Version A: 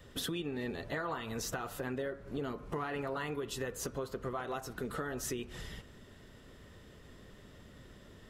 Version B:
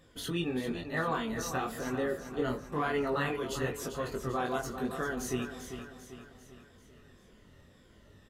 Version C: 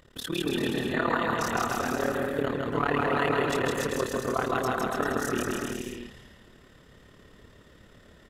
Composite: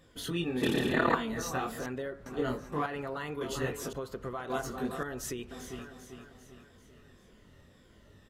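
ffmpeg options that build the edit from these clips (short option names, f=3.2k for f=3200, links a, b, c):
-filter_complex "[0:a]asplit=4[a][b][c][d];[1:a]asplit=6[e][f][g][h][i][j];[e]atrim=end=0.622[k];[2:a]atrim=start=0.618:end=1.152[l];[f]atrim=start=1.148:end=1.862[m];[a]atrim=start=1.858:end=2.262[n];[g]atrim=start=2.258:end=2.862[o];[b]atrim=start=2.858:end=3.412[p];[h]atrim=start=3.408:end=3.932[q];[c]atrim=start=3.928:end=4.502[r];[i]atrim=start=4.498:end=5.032[s];[d]atrim=start=5.028:end=5.512[t];[j]atrim=start=5.508[u];[k][l]acrossfade=d=0.004:c1=hsin:c2=hsin[v];[v][m]acrossfade=d=0.004:c1=hsin:c2=hsin[w];[w][n]acrossfade=d=0.004:c1=hsin:c2=hsin[x];[x][o]acrossfade=d=0.004:c1=hsin:c2=hsin[y];[y][p]acrossfade=d=0.004:c1=hsin:c2=hsin[z];[z][q]acrossfade=d=0.004:c1=hsin:c2=hsin[aa];[aa][r]acrossfade=d=0.004:c1=hsin:c2=hsin[ab];[ab][s]acrossfade=d=0.004:c1=hsin:c2=hsin[ac];[ac][t]acrossfade=d=0.004:c1=hsin:c2=hsin[ad];[ad][u]acrossfade=d=0.004:c1=hsin:c2=hsin"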